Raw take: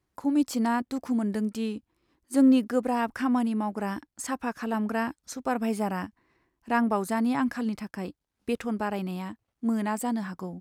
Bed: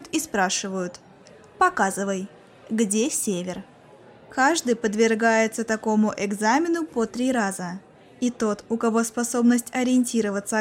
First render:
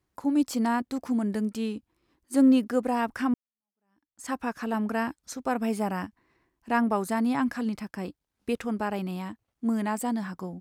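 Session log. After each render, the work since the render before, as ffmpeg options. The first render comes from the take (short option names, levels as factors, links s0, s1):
-filter_complex "[0:a]asplit=2[s0][s1];[s0]atrim=end=3.34,asetpts=PTS-STARTPTS,afade=t=out:st=3.336:d=0.004:c=hsin[s2];[s1]atrim=start=3.34,asetpts=PTS-STARTPTS,afade=t=in:d=0.96:c=exp[s3];[s2][s3]concat=n=2:v=0:a=1"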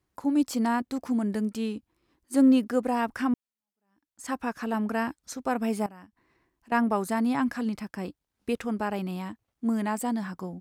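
-filter_complex "[0:a]asettb=1/sr,asplit=3[s0][s1][s2];[s0]atrim=end=5.864[s3];[s1]atrim=start=5.86:end=6.72,asetpts=PTS-STARTPTS,afade=t=in:d=0.004:c=qsin,afade=t=out:st=0.856:d=0.004:c=qsin,acompressor=threshold=0.00112:ratio=2:attack=3.2:release=140:knee=1:detection=peak[s4];[s2]atrim=start=6.716[s5];[s3][s4]acrossfade=d=0.004:c1=hsin:c2=qsin[s6];[s6][s5]acrossfade=d=0.004:c1=qsin:c2=hsin"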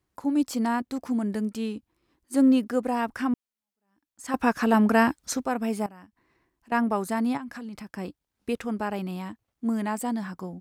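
-filter_complex "[0:a]asettb=1/sr,asplit=3[s0][s1][s2];[s0]atrim=end=7.374[s3];[s1]atrim=start=7.37:end=7.9,asetpts=PTS-STARTPTS,afade=t=in:d=0.004:c=qsin,afade=t=out:st=0.526:d=0.004:c=qsin,acompressor=threshold=0.0178:ratio=6:attack=3.2:release=140:knee=1:detection=peak[s4];[s2]atrim=start=7.896[s5];[s3][s4]acrossfade=d=0.004:c1=hsin:c2=qsin[s6];[s6][s5]acrossfade=d=0.004:c1=qsin:c2=hsin,asplit=3[s7][s8][s9];[s7]atrim=end=4.342[s10];[s8]atrim=start=4.338:end=5.452,asetpts=PTS-STARTPTS,volume=2.66[s11];[s9]atrim=start=5.448[s12];[s10][s11]acrossfade=d=0.004:c1=hsin:c2=hsin[s13];[s13][s12]acrossfade=d=0.004:c1=hsin:c2=hsin"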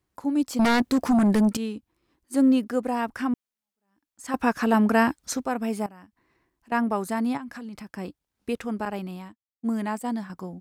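-filter_complex "[0:a]asettb=1/sr,asplit=3[s0][s1][s2];[s0]atrim=end=0.594[s3];[s1]atrim=start=0.59:end=1.57,asetpts=PTS-STARTPTS,afade=t=in:d=0.004:c=qsin,afade=t=out:st=0.976:d=0.004:c=qsin,aeval=exprs='0.158*sin(PI/2*2.51*val(0)/0.158)':c=same[s4];[s2]atrim=start=1.566[s5];[s3][s4]acrossfade=d=0.004:c1=hsin:c2=qsin[s6];[s6][s5]acrossfade=d=0.004:c1=qsin:c2=hsin,asettb=1/sr,asplit=3[s7][s8][s9];[s7]atrim=end=8.854[s10];[s8]atrim=start=8.85:end=10.3,asetpts=PTS-STARTPTS,afade=t=in:d=0.004:c=qsin,afade=t=out:st=1.446:d=0.004:c=qsin,agate=range=0.0224:threshold=0.0316:ratio=3:release=100:detection=peak[s11];[s9]atrim=start=10.296[s12];[s10][s11]acrossfade=d=0.004:c1=hsin:c2=qsin[s13];[s13][s12]acrossfade=d=0.004:c1=qsin:c2=hsin"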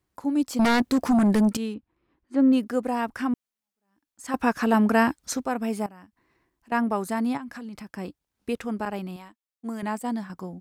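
-filter_complex "[0:a]asettb=1/sr,asplit=3[s0][s1][s2];[s0]atrim=end=1.744[s3];[s1]atrim=start=1.74:end=2.53,asetpts=PTS-STARTPTS,afade=t=in:d=0.004:c=qsin,afade=t=out:st=0.786:d=0.004:c=qsin,lowpass=2600[s4];[s2]atrim=start=2.526[s5];[s3][s4]acrossfade=d=0.004:c1=hsin:c2=qsin[s6];[s6][s5]acrossfade=d=0.004:c1=qsin:c2=hsin,asettb=1/sr,asplit=3[s7][s8][s9];[s7]atrim=end=9.164[s10];[s8]atrim=start=9.16:end=9.83,asetpts=PTS-STARTPTS,afade=t=in:d=0.004:c=qsin,afade=t=out:st=0.666:d=0.004:c=qsin,equalizer=f=110:t=o:w=2.3:g=-12.5[s11];[s9]atrim=start=9.826[s12];[s10][s11]acrossfade=d=0.004:c1=hsin:c2=qsin[s13];[s13][s12]acrossfade=d=0.004:c1=qsin:c2=hsin"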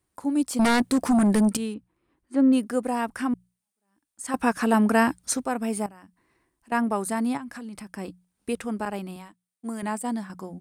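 -af "equalizer=f=9100:w=3.6:g=13.5,bandreject=f=60:t=h:w=6,bandreject=f=120:t=h:w=6,bandreject=f=180:t=h:w=6"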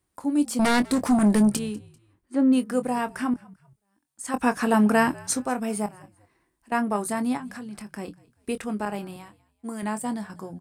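-filter_complex "[0:a]asplit=2[s0][s1];[s1]adelay=24,volume=0.282[s2];[s0][s2]amix=inputs=2:normalize=0,asplit=3[s3][s4][s5];[s4]adelay=196,afreqshift=-56,volume=0.0708[s6];[s5]adelay=392,afreqshift=-112,volume=0.0248[s7];[s3][s6][s7]amix=inputs=3:normalize=0"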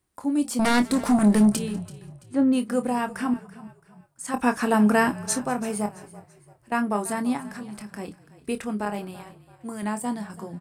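-filter_complex "[0:a]asplit=2[s0][s1];[s1]adelay=29,volume=0.251[s2];[s0][s2]amix=inputs=2:normalize=0,asplit=4[s3][s4][s5][s6];[s4]adelay=334,afreqshift=-32,volume=0.126[s7];[s5]adelay=668,afreqshift=-64,volume=0.0479[s8];[s6]adelay=1002,afreqshift=-96,volume=0.0182[s9];[s3][s7][s8][s9]amix=inputs=4:normalize=0"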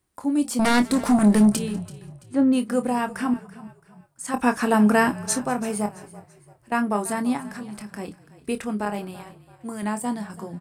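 -af "volume=1.19"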